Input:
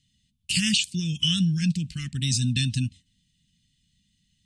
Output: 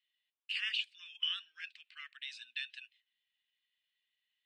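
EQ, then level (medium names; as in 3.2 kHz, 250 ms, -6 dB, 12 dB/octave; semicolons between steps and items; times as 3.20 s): steep high-pass 920 Hz 36 dB/octave; distance through air 480 m; treble shelf 4.7 kHz -9.5 dB; +1.5 dB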